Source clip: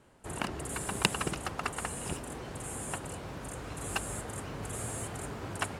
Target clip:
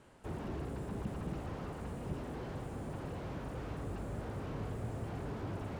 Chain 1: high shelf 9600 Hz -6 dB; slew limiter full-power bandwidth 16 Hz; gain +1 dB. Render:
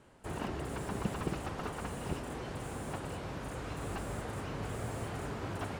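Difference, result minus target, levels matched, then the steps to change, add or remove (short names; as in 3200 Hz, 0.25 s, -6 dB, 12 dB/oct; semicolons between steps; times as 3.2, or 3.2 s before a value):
slew limiter: distortion -4 dB
change: slew limiter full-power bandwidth 4.5 Hz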